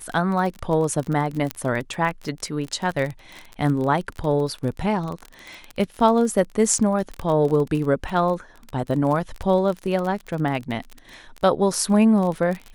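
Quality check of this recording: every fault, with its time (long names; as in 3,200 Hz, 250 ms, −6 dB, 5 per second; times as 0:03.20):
surface crackle 28 per second −26 dBFS
0:01.51: click −9 dBFS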